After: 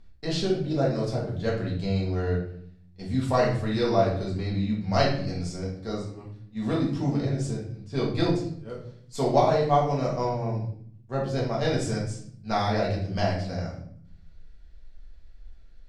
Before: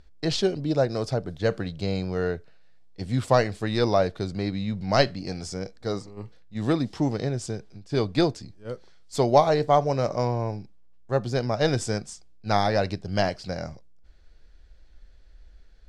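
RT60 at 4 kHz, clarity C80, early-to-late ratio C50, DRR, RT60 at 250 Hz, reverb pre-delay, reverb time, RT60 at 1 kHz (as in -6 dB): 0.45 s, 9.5 dB, 4.5 dB, -5.5 dB, 1.0 s, 4 ms, 0.60 s, 0.55 s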